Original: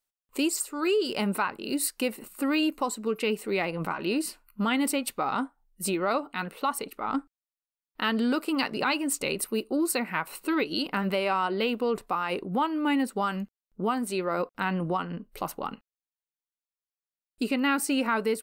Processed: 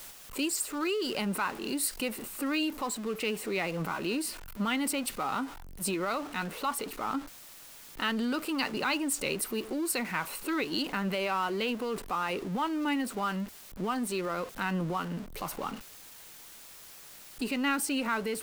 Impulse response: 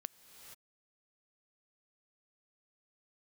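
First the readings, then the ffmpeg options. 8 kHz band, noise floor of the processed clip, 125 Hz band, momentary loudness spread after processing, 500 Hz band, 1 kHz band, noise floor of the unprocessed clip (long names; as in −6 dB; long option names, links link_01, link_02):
−1.0 dB, −50 dBFS, −2.0 dB, 15 LU, −5.0 dB, −4.0 dB, below −85 dBFS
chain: -filter_complex "[0:a]aeval=exprs='val(0)+0.5*0.0158*sgn(val(0))':channel_layout=same,acrossover=split=160|1100[link_01][link_02][link_03];[link_02]alimiter=level_in=0.5dB:limit=-24dB:level=0:latency=1,volume=-0.5dB[link_04];[link_01][link_04][link_03]amix=inputs=3:normalize=0,volume=-3dB"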